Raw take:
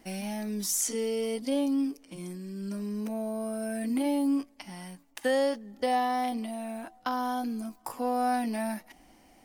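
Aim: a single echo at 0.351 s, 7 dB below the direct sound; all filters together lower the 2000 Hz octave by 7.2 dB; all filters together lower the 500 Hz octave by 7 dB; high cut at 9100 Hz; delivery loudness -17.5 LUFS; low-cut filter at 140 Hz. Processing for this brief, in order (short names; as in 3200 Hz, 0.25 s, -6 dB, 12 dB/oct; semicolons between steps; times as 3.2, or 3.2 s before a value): HPF 140 Hz; LPF 9100 Hz; bell 500 Hz -7.5 dB; bell 2000 Hz -8.5 dB; echo 0.351 s -7 dB; gain +16 dB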